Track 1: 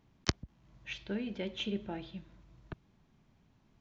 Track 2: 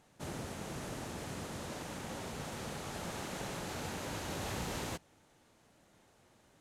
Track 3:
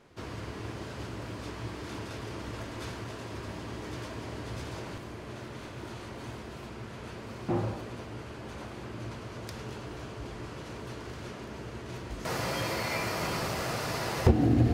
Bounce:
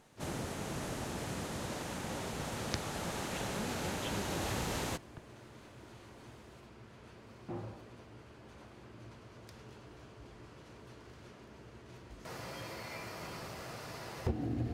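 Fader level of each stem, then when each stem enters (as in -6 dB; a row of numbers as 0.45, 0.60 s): -7.5, +2.5, -12.5 dB; 2.45, 0.00, 0.00 s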